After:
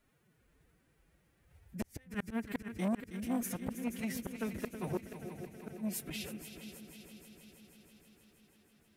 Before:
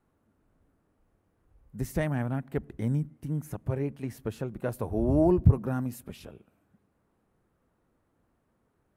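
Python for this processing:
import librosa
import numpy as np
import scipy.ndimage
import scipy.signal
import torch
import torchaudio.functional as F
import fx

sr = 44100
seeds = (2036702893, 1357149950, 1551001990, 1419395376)

y = fx.pitch_keep_formants(x, sr, semitones=9.0)
y = fx.gate_flip(y, sr, shuts_db=-22.0, range_db=-39)
y = fx.high_shelf_res(y, sr, hz=1500.0, db=9.0, q=1.5)
y = fx.echo_heads(y, sr, ms=160, heads='second and third', feedback_pct=65, wet_db=-11.5)
y = fx.transformer_sat(y, sr, knee_hz=500.0)
y = y * 10.0 ** (-1.0 / 20.0)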